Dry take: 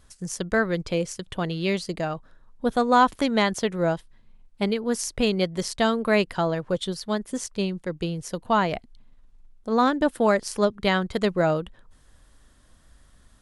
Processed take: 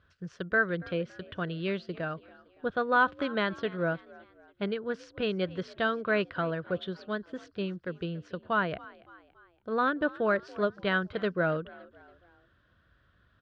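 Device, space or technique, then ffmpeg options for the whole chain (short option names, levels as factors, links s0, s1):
frequency-shifting delay pedal into a guitar cabinet: -filter_complex "[0:a]asplit=4[s0][s1][s2][s3];[s1]adelay=282,afreqshift=57,volume=0.0891[s4];[s2]adelay=564,afreqshift=114,volume=0.0427[s5];[s3]adelay=846,afreqshift=171,volume=0.0204[s6];[s0][s4][s5][s6]amix=inputs=4:normalize=0,highpass=83,equalizer=f=87:t=q:w=4:g=6,equalizer=f=240:t=q:w=4:g=-7,equalizer=f=840:t=q:w=4:g=-10,equalizer=f=1500:t=q:w=4:g=9,equalizer=f=2100:t=q:w=4:g=-5,lowpass=f=3400:w=0.5412,lowpass=f=3400:w=1.3066,volume=0.531"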